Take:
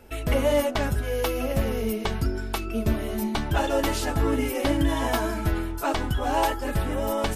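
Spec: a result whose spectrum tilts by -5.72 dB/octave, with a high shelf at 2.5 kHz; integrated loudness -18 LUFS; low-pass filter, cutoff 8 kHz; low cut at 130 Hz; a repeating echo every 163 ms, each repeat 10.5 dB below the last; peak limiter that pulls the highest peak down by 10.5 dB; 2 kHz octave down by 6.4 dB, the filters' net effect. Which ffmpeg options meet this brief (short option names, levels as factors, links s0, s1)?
-af "highpass=130,lowpass=8000,equalizer=f=2000:t=o:g=-4.5,highshelf=f=2500:g=-8.5,alimiter=limit=0.0631:level=0:latency=1,aecho=1:1:163|326|489:0.299|0.0896|0.0269,volume=5.01"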